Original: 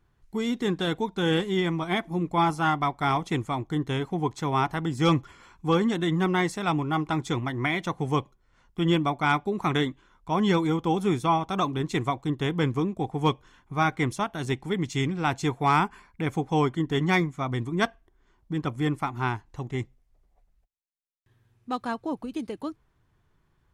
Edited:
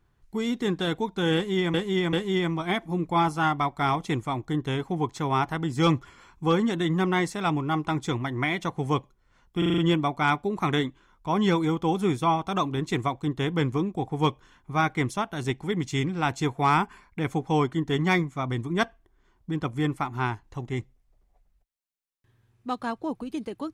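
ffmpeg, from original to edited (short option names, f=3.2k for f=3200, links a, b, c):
-filter_complex "[0:a]asplit=8[a][b][c][d][e][f][g][h];[a]atrim=end=1.742[i];[b]atrim=start=1.348:end=1.742[j];[c]atrim=start=1.348:end=8.842[k];[d]atrim=start=8.798:end=8.842[l];[e]atrim=start=8.798:end=8.842[m];[f]atrim=start=8.798:end=8.842[n];[g]atrim=start=8.798:end=8.842[o];[h]atrim=start=8.798[p];[i][j]acrossfade=d=0.004:c1=hsin:c2=hsin[q];[q][k]acrossfade=d=0.004:c1=hsin:c2=hsin[r];[r][l]acrossfade=d=0.004:c1=hsin:c2=hsin[s];[s][m]acrossfade=d=0.004:c1=hsin:c2=hsin[t];[t][n]acrossfade=d=0.004:c1=hsin:c2=hsin[u];[u][o]acrossfade=d=0.004:c1=hsin:c2=hsin[v];[v][p]acrossfade=d=0.004:c1=hsin:c2=hsin"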